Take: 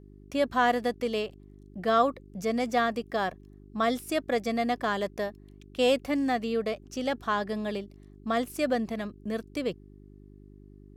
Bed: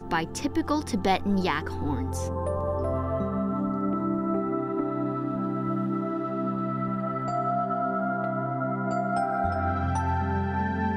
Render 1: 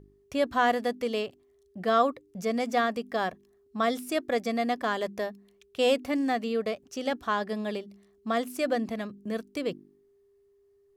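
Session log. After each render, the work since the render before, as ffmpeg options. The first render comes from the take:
-af "bandreject=f=50:t=h:w=4,bandreject=f=100:t=h:w=4,bandreject=f=150:t=h:w=4,bandreject=f=200:t=h:w=4,bandreject=f=250:t=h:w=4,bandreject=f=300:t=h:w=4,bandreject=f=350:t=h:w=4"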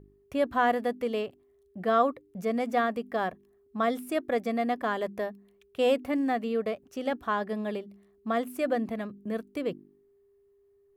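-af "equalizer=f=5.6k:t=o:w=1.5:g=-11"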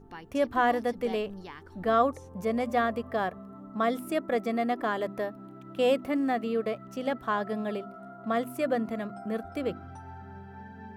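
-filter_complex "[1:a]volume=-18dB[a];[0:a][a]amix=inputs=2:normalize=0"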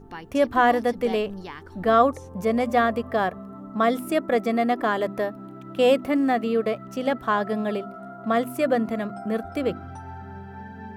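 -af "volume=6dB"

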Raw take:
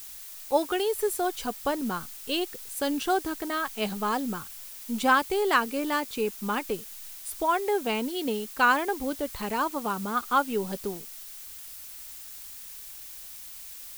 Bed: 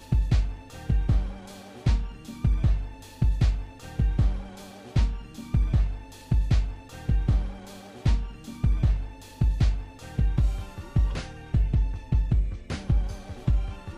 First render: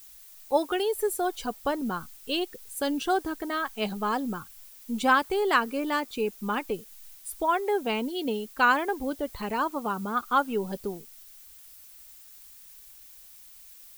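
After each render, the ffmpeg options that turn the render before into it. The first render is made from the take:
-af "afftdn=nr=9:nf=-43"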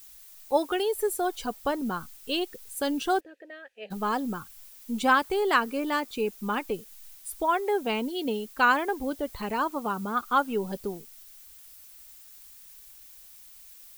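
-filter_complex "[0:a]asplit=3[a][b][c];[a]afade=t=out:st=3.19:d=0.02[d];[b]asplit=3[e][f][g];[e]bandpass=f=530:t=q:w=8,volume=0dB[h];[f]bandpass=f=1.84k:t=q:w=8,volume=-6dB[i];[g]bandpass=f=2.48k:t=q:w=8,volume=-9dB[j];[h][i][j]amix=inputs=3:normalize=0,afade=t=in:st=3.19:d=0.02,afade=t=out:st=3.9:d=0.02[k];[c]afade=t=in:st=3.9:d=0.02[l];[d][k][l]amix=inputs=3:normalize=0"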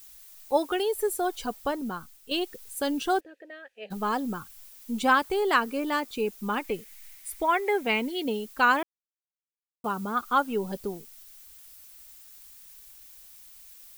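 -filter_complex "[0:a]asettb=1/sr,asplit=3[a][b][c];[a]atrim=end=6.644[d];[b]atrim=start=6.64:end=8.23,asetpts=PTS-STARTPTS,afade=t=in:d=0.004:c=qsin,afade=t=out:st=1.586:d=0.004:c=qsin,equalizer=f=2.1k:w=2.9:g=11.5[e];[c]atrim=start=8.226[f];[d][e]acrossfade=d=0.004:c1=hsin:c2=qsin[g];[g][f]acrossfade=d=0.004:c1=qsin:c2=hsin,asplit=4[h][i][j][k];[h]atrim=end=2.31,asetpts=PTS-STARTPTS,afade=t=out:st=1.54:d=0.77:silence=0.398107[l];[i]atrim=start=2.31:end=8.83,asetpts=PTS-STARTPTS,afade=t=in:d=0.004:c=hsin:silence=0.398107,afade=t=out:st=6.516:d=0.004:c=hsin[m];[j]atrim=start=8.83:end=9.84,asetpts=PTS-STARTPTS,volume=0[n];[k]atrim=start=9.84,asetpts=PTS-STARTPTS,afade=t=in:d=0.004:c=hsin[o];[l][m][n][o]concat=n=4:v=0:a=1"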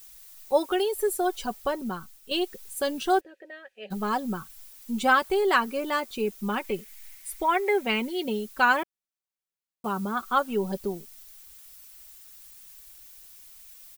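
-af "aecho=1:1:5.3:0.47"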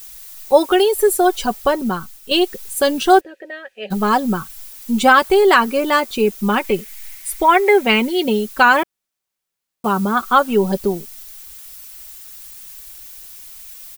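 -af "alimiter=level_in=11.5dB:limit=-1dB:release=50:level=0:latency=1"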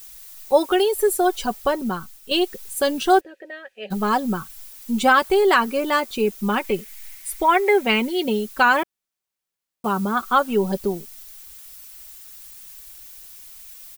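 -af "volume=-4.5dB"

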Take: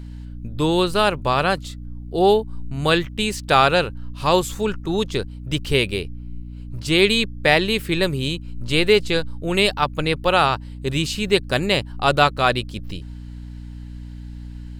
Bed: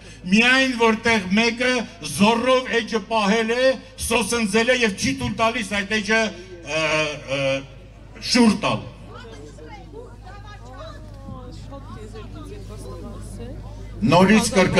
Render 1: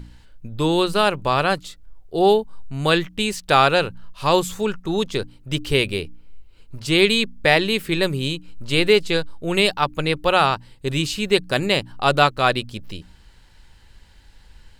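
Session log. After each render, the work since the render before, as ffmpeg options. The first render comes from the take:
-af "bandreject=f=60:t=h:w=4,bandreject=f=120:t=h:w=4,bandreject=f=180:t=h:w=4,bandreject=f=240:t=h:w=4,bandreject=f=300:t=h:w=4"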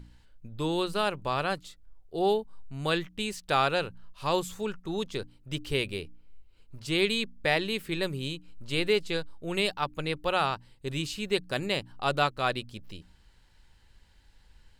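-af "volume=-10dB"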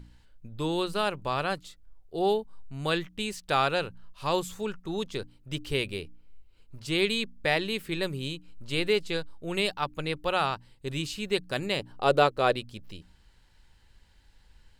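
-filter_complex "[0:a]asettb=1/sr,asplit=3[a][b][c];[a]atrim=end=11.794[d];[b]atrim=start=11.79:end=12.56,asetpts=PTS-STARTPTS,afade=t=in:d=0.004:c=qsin,afade=t=out:st=0.766:d=0.004:c=qsin,equalizer=f=460:w=1.3:g=10.5[e];[c]atrim=start=12.556[f];[d][e]acrossfade=d=0.004:c1=hsin:c2=qsin[g];[g][f]acrossfade=d=0.004:c1=qsin:c2=hsin"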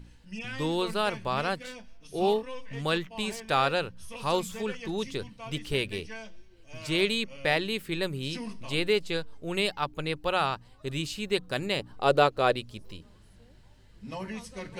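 -filter_complex "[1:a]volume=-23.5dB[a];[0:a][a]amix=inputs=2:normalize=0"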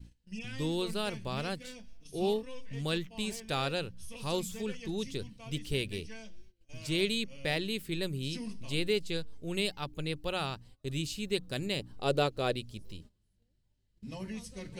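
-af "agate=range=-19dB:threshold=-49dB:ratio=16:detection=peak,equalizer=f=1.1k:t=o:w=2.4:g=-11.5"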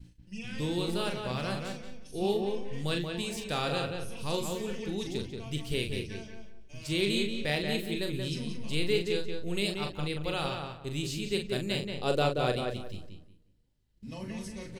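-filter_complex "[0:a]asplit=2[a][b];[b]adelay=40,volume=-6dB[c];[a][c]amix=inputs=2:normalize=0,asplit=2[d][e];[e]adelay=181,lowpass=f=2.7k:p=1,volume=-4dB,asplit=2[f][g];[g]adelay=181,lowpass=f=2.7k:p=1,volume=0.26,asplit=2[h][i];[i]adelay=181,lowpass=f=2.7k:p=1,volume=0.26,asplit=2[j][k];[k]adelay=181,lowpass=f=2.7k:p=1,volume=0.26[l];[d][f][h][j][l]amix=inputs=5:normalize=0"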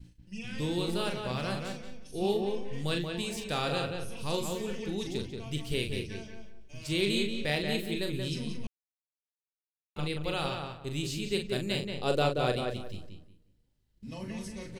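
-filter_complex "[0:a]asplit=3[a][b][c];[a]atrim=end=8.67,asetpts=PTS-STARTPTS,afade=t=out:st=8.666:d=0.004:c=hsin[d];[b]atrim=start=8.67:end=9.96,asetpts=PTS-STARTPTS,volume=0[e];[c]atrim=start=9.96,asetpts=PTS-STARTPTS,afade=t=in:d=0.004:c=hsin[f];[d][e][f]concat=n=3:v=0:a=1"

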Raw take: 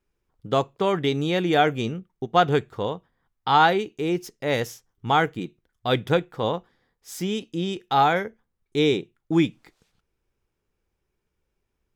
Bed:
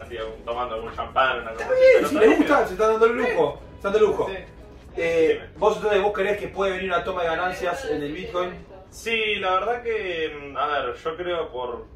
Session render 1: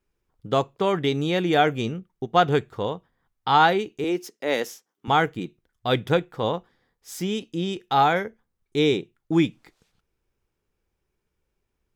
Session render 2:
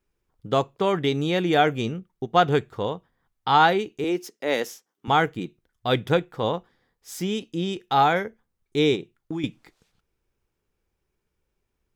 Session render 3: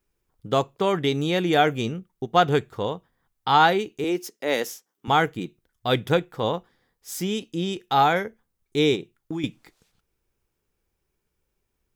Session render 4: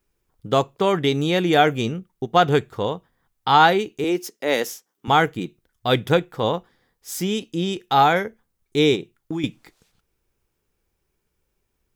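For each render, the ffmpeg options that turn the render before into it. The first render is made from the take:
-filter_complex "[0:a]asettb=1/sr,asplit=3[a][b][c];[a]atrim=end=4.044[d];[b]atrim=start=4.04:end=5.08,asetpts=PTS-STARTPTS,afade=t=in:d=0.004:c=qsin,afade=t=out:st=1.036:d=0.004:c=qsin,highpass=f=220:w=0.5412,highpass=f=220:w=1.3066[e];[c]atrim=start=5.076[f];[d][e]acrossfade=d=0.004:c1=hsin:c2=qsin[g];[g][f]acrossfade=d=0.004:c1=qsin:c2=hsin"
-filter_complex "[0:a]asettb=1/sr,asplit=3[a][b][c];[a]atrim=end=8.954[d];[b]atrim=start=8.95:end=9.44,asetpts=PTS-STARTPTS,afade=t=in:d=0.004:c=qsin,afade=t=out:st=0.486:d=0.004:c=qsin,acompressor=threshold=-26dB:ratio=8:attack=3.2:release=140:knee=1:detection=peak[e];[c]atrim=start=9.436[f];[d][e]acrossfade=d=0.004:c1=hsin:c2=qsin[g];[g][f]acrossfade=d=0.004:c1=qsin:c2=hsin"
-af "highshelf=f=7.3k:g=7"
-af "volume=3dB,alimiter=limit=-3dB:level=0:latency=1"

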